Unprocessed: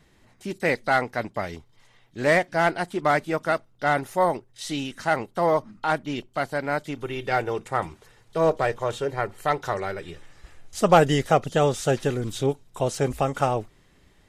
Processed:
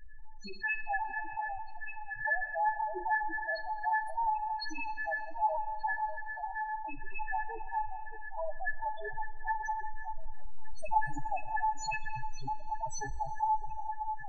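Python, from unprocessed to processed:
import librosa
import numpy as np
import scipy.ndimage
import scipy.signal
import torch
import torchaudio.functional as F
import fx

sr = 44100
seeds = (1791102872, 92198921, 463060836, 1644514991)

y = fx.delta_hold(x, sr, step_db=-32.0, at=(9.91, 10.99))
y = fx.high_shelf(y, sr, hz=8800.0, db=-11.5)
y = fx.hum_notches(y, sr, base_hz=50, count=8)
y = y + 0.39 * np.pad(y, (int(3.0 * sr / 1000.0), 0))[:len(y)]
y = fx.fixed_phaser(y, sr, hz=1000.0, stages=6, at=(4.83, 5.34))
y = fx.level_steps(y, sr, step_db=17, at=(5.93, 6.83))
y = fx.comb_fb(y, sr, f0_hz=870.0, decay_s=0.17, harmonics='all', damping=0.0, mix_pct=100)
y = fx.echo_alternate(y, sr, ms=586, hz=1000.0, feedback_pct=75, wet_db=-11)
y = fx.spec_topn(y, sr, count=4)
y = fx.rev_schroeder(y, sr, rt60_s=2.0, comb_ms=32, drr_db=16.0)
y = fx.env_flatten(y, sr, amount_pct=50)
y = y * librosa.db_to_amplitude(6.5)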